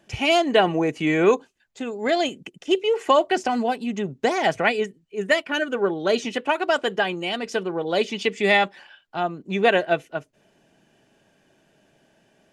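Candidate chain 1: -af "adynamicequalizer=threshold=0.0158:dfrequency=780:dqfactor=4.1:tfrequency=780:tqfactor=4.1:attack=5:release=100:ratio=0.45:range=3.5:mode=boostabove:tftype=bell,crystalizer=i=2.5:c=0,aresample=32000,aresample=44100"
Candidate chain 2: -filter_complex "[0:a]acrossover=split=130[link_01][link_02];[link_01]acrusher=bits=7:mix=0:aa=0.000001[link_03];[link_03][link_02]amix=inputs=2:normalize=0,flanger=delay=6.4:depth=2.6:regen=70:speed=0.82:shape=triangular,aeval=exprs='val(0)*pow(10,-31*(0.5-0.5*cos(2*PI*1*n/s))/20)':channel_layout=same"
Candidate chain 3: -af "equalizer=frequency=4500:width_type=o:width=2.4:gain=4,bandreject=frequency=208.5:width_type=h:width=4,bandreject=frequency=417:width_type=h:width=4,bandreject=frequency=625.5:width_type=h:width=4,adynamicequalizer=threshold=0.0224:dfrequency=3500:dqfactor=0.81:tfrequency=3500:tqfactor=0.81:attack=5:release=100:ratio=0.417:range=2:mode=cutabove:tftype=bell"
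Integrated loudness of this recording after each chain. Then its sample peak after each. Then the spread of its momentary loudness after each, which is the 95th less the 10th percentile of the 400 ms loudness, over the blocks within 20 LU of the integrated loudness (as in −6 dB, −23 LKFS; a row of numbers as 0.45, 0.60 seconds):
−20.0, −33.5, −22.0 LKFS; −1.5, −13.5, −3.5 dBFS; 10, 20, 9 LU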